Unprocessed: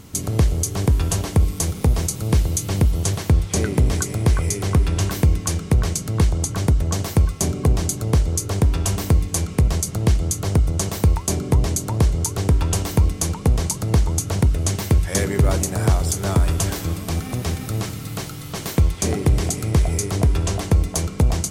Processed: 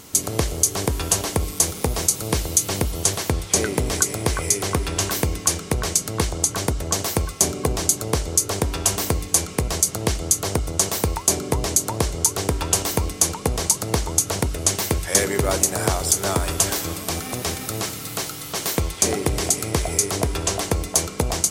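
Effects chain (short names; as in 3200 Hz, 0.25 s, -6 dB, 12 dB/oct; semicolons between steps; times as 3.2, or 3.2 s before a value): tone controls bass -12 dB, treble +4 dB; gain +3 dB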